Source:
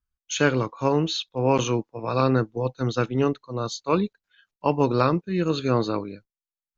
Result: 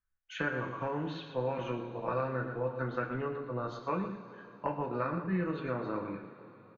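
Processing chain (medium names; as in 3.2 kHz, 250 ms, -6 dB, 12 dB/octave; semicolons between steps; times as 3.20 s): on a send: delay 116 ms -11.5 dB; on the sum: compression, threshold -27 dBFS, peak gain reduction 13 dB; resonant low-pass 1.8 kHz, resonance Q 2.5; two-slope reverb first 0.26 s, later 3.7 s, from -19 dB, DRR 1 dB; trim -6.5 dB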